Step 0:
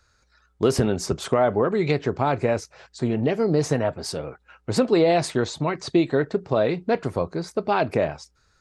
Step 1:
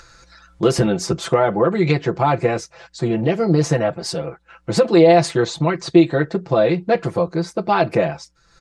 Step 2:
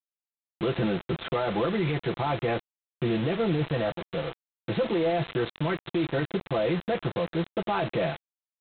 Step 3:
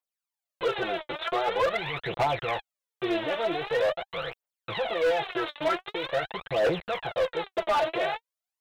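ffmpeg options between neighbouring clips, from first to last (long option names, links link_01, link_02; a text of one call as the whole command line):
ffmpeg -i in.wav -af "lowpass=9400,aecho=1:1:5.9:1,acompressor=mode=upward:threshold=-38dB:ratio=2.5,volume=2dB" out.wav
ffmpeg -i in.wav -af "alimiter=limit=-12.5dB:level=0:latency=1:release=14,aresample=8000,acrusher=bits=4:mix=0:aa=0.000001,aresample=44100,volume=-6dB" out.wav
ffmpeg -i in.wav -af "aphaser=in_gain=1:out_gain=1:delay=3.5:decay=0.75:speed=0.45:type=triangular,lowshelf=frequency=390:width_type=q:width=1.5:gain=-12.5,asoftclip=type=hard:threshold=-20.5dB" out.wav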